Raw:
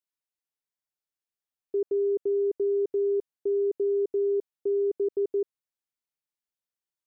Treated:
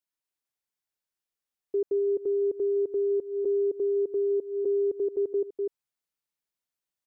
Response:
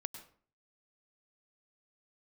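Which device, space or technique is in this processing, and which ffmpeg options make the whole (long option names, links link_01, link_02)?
ducked delay: -filter_complex "[0:a]asplit=3[link_01][link_02][link_03];[link_02]adelay=248,volume=-3dB[link_04];[link_03]apad=whole_len=322720[link_05];[link_04][link_05]sidechaincompress=threshold=-46dB:ratio=4:attack=16:release=132[link_06];[link_01][link_06]amix=inputs=2:normalize=0"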